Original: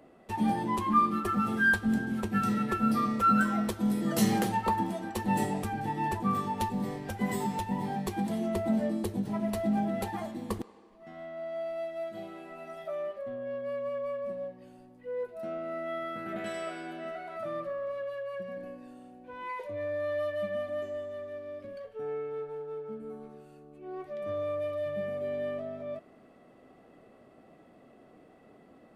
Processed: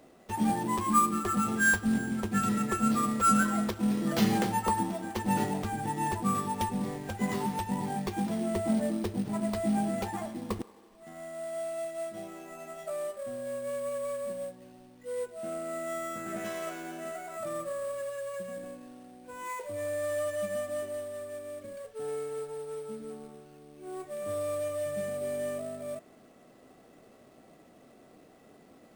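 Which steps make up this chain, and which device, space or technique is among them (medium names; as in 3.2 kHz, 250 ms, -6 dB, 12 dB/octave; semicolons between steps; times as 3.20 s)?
early companding sampler (sample-rate reducer 9 kHz, jitter 0%; companded quantiser 6-bit)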